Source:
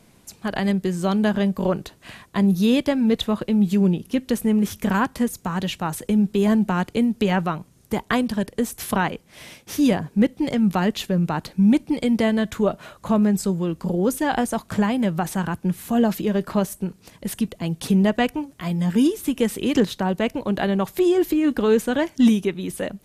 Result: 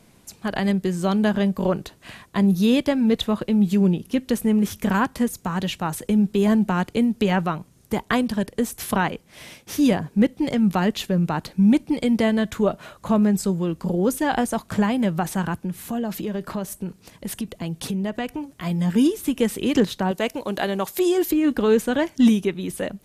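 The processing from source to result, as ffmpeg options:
-filter_complex "[0:a]asettb=1/sr,asplit=3[s0][s1][s2];[s0]atrim=end=15.574[s3];[s1]atrim=start=15.57:end=18.53,asetpts=PTS-STARTPTS,afade=t=in:d=0.004:c=qsin,afade=t=out:st=2.956:d=0.004:c=qsin,acompressor=threshold=0.0562:ratio=3:attack=3.2:release=140:knee=1:detection=peak[s4];[s2]atrim=start=18.526[s5];[s3][s4]acrossfade=d=0.004:c1=hsin:c2=qsin[s6];[s6][s5]acrossfade=d=0.004:c1=qsin:c2=hsin,asettb=1/sr,asplit=3[s7][s8][s9];[s7]atrim=end=20.114[s10];[s8]atrim=start=20.11:end=21.31,asetpts=PTS-STARTPTS,afade=t=in:d=0.004:c=qsin,afade=t=out:st=1.196:d=0.004:c=qsin,bass=f=250:g=-9,treble=f=4000:g=7[s11];[s9]atrim=start=21.306[s12];[s10][s11]acrossfade=d=0.004:c1=hsin:c2=qsin[s13];[s13][s12]acrossfade=d=0.004:c1=qsin:c2=hsin"

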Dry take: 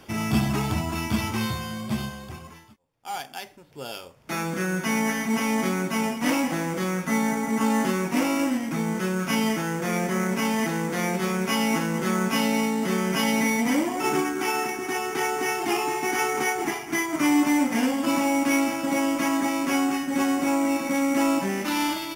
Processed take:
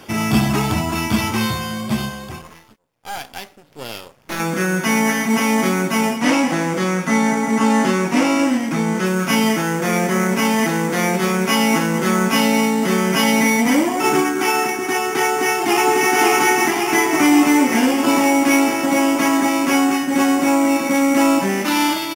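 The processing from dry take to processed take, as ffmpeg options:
-filter_complex "[0:a]asettb=1/sr,asplit=3[s0][s1][s2];[s0]atrim=end=2.414[s3];[s1]atrim=start=2.41:end=4.4,asetpts=PTS-STARTPTS,afade=t=in:d=0.004:c=qsin,afade=t=out:st=1.986:d=0.004:c=qsin,aeval=exprs='max(val(0),0)':c=same[s4];[s2]atrim=start=4.396[s5];[s3][s4]acrossfade=d=0.004:c1=hsin:c2=qsin[s6];[s6][s5]acrossfade=d=0.004:c1=qsin:c2=hsin,asettb=1/sr,asplit=3[s7][s8][s9];[s7]atrim=end=6.174[s10];[s8]atrim=start=6.17:end=9.06,asetpts=PTS-STARTPTS,afade=t=in:d=0.004:c=qsin,afade=t=out:st=2.886:d=0.004:c=qsin,acrossover=split=9100[s11][s12];[s12]acompressor=threshold=0.002:ratio=4:attack=1:release=60[s13];[s11][s13]amix=inputs=2:normalize=0[s14];[s9]atrim=start=9.056[s15];[s10][s14]acrossfade=d=0.004:c1=hsin:c2=qsin[s16];[s16][s15]acrossfade=d=0.004:c1=qsin:c2=hsin,asplit=2[s17][s18];[s18]afade=t=in:st=15.22:d=0.01,afade=t=out:st=16.13:d=0.01,aecho=0:1:550|1100|1650|2200|2750|3300|3850|4400|4950|5500|6050|6600:0.891251|0.623876|0.436713|0.305699|0.213989|0.149793|0.104855|0.0733983|0.0513788|0.0359652|0.0251756|0.0176229[s19];[s17][s19]amix=inputs=2:normalize=0,lowshelf=f=77:g=-9.5,acontrast=90,volume=1.12"

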